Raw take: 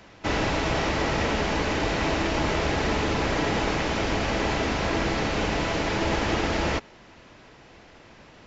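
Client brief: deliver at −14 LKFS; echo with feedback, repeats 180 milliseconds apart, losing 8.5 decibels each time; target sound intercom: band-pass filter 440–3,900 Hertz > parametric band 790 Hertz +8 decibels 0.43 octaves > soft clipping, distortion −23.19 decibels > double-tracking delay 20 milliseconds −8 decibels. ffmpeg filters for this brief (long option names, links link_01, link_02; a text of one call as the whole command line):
ffmpeg -i in.wav -filter_complex "[0:a]highpass=440,lowpass=3900,equalizer=frequency=790:width_type=o:width=0.43:gain=8,aecho=1:1:180|360|540|720:0.376|0.143|0.0543|0.0206,asoftclip=threshold=-15.5dB,asplit=2[link_01][link_02];[link_02]adelay=20,volume=-8dB[link_03];[link_01][link_03]amix=inputs=2:normalize=0,volume=11.5dB" out.wav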